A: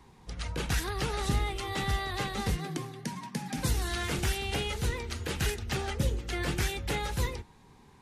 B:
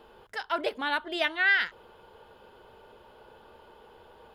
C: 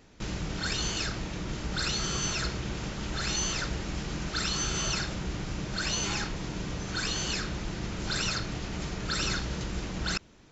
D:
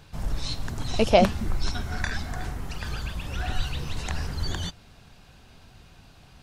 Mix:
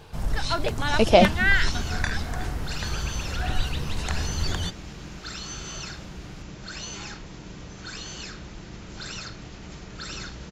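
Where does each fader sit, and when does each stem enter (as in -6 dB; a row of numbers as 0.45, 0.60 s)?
off, +1.5 dB, -6.0 dB, +2.0 dB; off, 0.00 s, 0.90 s, 0.00 s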